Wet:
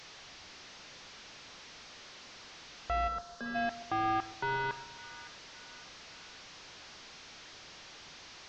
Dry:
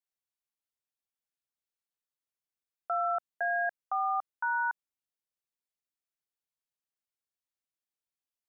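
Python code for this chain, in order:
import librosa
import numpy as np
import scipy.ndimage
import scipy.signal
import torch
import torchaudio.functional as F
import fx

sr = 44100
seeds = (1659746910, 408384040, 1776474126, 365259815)

y = fx.delta_mod(x, sr, bps=32000, step_db=-50.0)
y = fx.fixed_phaser(y, sr, hz=470.0, stages=8, at=(3.07, 3.54), fade=0.02)
y = fx.echo_split(y, sr, split_hz=1200.0, low_ms=132, high_ms=561, feedback_pct=52, wet_db=-14.5)
y = y * librosa.db_to_amplitude(5.5)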